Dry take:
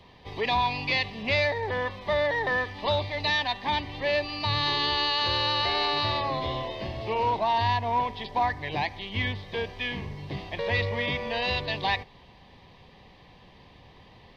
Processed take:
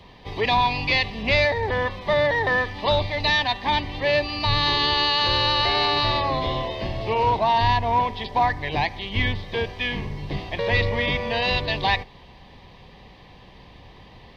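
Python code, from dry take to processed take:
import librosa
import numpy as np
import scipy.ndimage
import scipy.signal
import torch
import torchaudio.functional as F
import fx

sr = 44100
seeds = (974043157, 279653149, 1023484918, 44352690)

y = fx.octave_divider(x, sr, octaves=2, level_db=-3.0)
y = y * 10.0 ** (5.0 / 20.0)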